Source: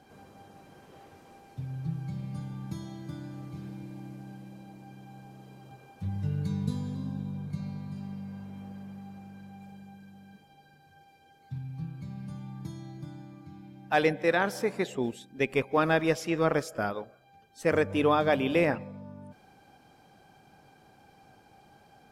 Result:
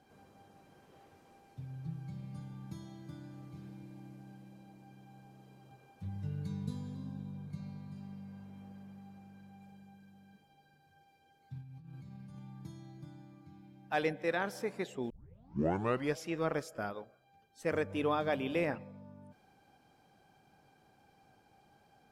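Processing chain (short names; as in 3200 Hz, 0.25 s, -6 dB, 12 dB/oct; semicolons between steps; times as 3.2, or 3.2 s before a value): 11.61–12.39 negative-ratio compressor -42 dBFS, ratio -1; 15.1 tape start 1.07 s; gain -8 dB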